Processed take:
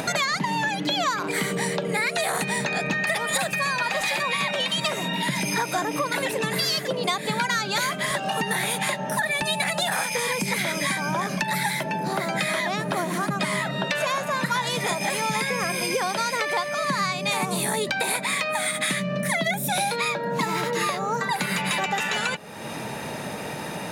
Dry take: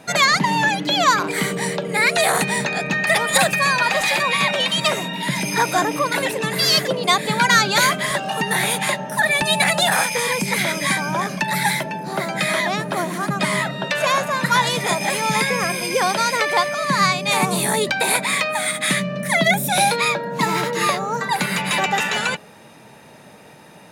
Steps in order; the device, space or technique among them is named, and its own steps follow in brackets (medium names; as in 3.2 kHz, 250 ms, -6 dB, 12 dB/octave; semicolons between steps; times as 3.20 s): upward and downward compression (upward compressor, threshold -20 dBFS; compression, threshold -22 dBFS, peak gain reduction 11.5 dB)